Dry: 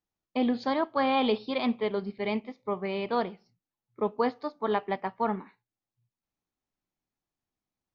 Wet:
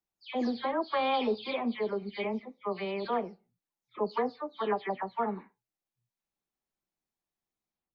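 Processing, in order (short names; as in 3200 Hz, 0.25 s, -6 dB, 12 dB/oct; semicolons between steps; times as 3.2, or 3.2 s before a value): spectral delay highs early, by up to 0.24 s; tone controls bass -3 dB, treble 0 dB; gain -2 dB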